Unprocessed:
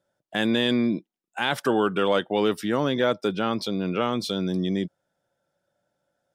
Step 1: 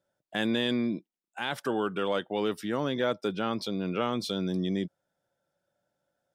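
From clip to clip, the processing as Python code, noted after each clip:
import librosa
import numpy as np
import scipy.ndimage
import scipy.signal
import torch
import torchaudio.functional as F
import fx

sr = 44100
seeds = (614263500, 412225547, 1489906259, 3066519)

y = fx.rider(x, sr, range_db=4, speed_s=2.0)
y = y * 10.0 ** (-5.5 / 20.0)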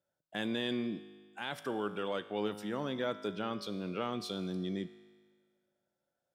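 y = fx.comb_fb(x, sr, f0_hz=52.0, decay_s=1.6, harmonics='all', damping=0.0, mix_pct=60)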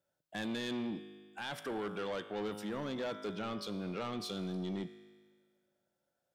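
y = 10.0 ** (-34.0 / 20.0) * np.tanh(x / 10.0 ** (-34.0 / 20.0))
y = y * 10.0 ** (1.5 / 20.0)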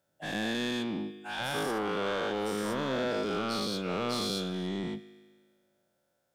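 y = fx.spec_dilate(x, sr, span_ms=240)
y = y * 10.0 ** (1.5 / 20.0)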